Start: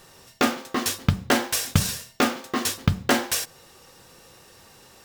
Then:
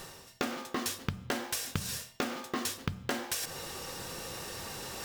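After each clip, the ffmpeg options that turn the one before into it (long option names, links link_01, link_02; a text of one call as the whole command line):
ffmpeg -i in.wav -af "areverse,acompressor=mode=upward:threshold=-23dB:ratio=2.5,areverse,bandreject=frequency=122:width_type=h:width=4,bandreject=frequency=244:width_type=h:width=4,bandreject=frequency=366:width_type=h:width=4,bandreject=frequency=488:width_type=h:width=4,bandreject=frequency=610:width_type=h:width=4,bandreject=frequency=732:width_type=h:width=4,bandreject=frequency=854:width_type=h:width=4,bandreject=frequency=976:width_type=h:width=4,bandreject=frequency=1098:width_type=h:width=4,bandreject=frequency=1220:width_type=h:width=4,bandreject=frequency=1342:width_type=h:width=4,bandreject=frequency=1464:width_type=h:width=4,bandreject=frequency=1586:width_type=h:width=4,bandreject=frequency=1708:width_type=h:width=4,bandreject=frequency=1830:width_type=h:width=4,bandreject=frequency=1952:width_type=h:width=4,bandreject=frequency=2074:width_type=h:width=4,bandreject=frequency=2196:width_type=h:width=4,bandreject=frequency=2318:width_type=h:width=4,bandreject=frequency=2440:width_type=h:width=4,bandreject=frequency=2562:width_type=h:width=4,bandreject=frequency=2684:width_type=h:width=4,bandreject=frequency=2806:width_type=h:width=4,bandreject=frequency=2928:width_type=h:width=4,bandreject=frequency=3050:width_type=h:width=4,bandreject=frequency=3172:width_type=h:width=4,bandreject=frequency=3294:width_type=h:width=4,bandreject=frequency=3416:width_type=h:width=4,acompressor=threshold=-25dB:ratio=10,volume=-4.5dB" out.wav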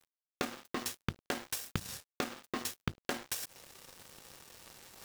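ffmpeg -i in.wav -af "aeval=exprs='sgn(val(0))*max(abs(val(0))-0.0126,0)':channel_layout=same" out.wav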